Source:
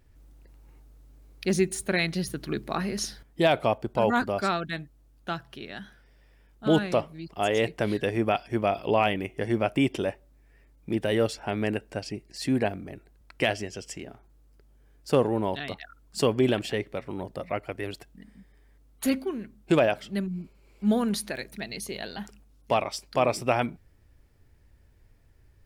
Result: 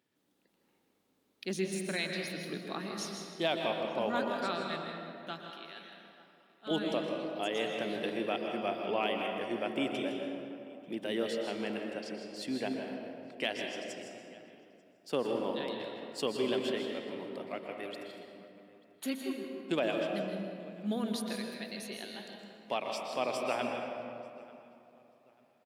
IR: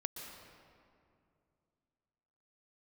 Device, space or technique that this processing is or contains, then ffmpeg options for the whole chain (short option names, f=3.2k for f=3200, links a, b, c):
PA in a hall: -filter_complex "[0:a]highpass=f=180:w=0.5412,highpass=f=180:w=1.3066,equalizer=f=3.4k:t=o:w=0.66:g=7,aecho=1:1:160:0.335[a];[1:a]atrim=start_sample=2205[b];[a][b]afir=irnorm=-1:irlink=0,asettb=1/sr,asplit=3[c][d][e];[c]atrim=end=5.504[f];[d]atrim=start=5.5:end=6.71,asetpts=PTS-STARTPTS,afade=t=in:d=0.004:c=qsin,afade=t=out:st=1.206:d=0.004:c=qsin,highpass=f=570:p=1[g];[e]atrim=start=6.706[h];[f][g]acrossfade=d=0.004:c1=hsin:c2=qsin[i];[i][h]acrossfade=d=0.004:c1=qsin:c2=hsin,asplit=2[j][k];[k]adelay=890,lowpass=f=2.8k:p=1,volume=-21.5dB,asplit=2[l][m];[m]adelay=890,lowpass=f=2.8k:p=1,volume=0.3[n];[j][l][n]amix=inputs=3:normalize=0,volume=-8dB"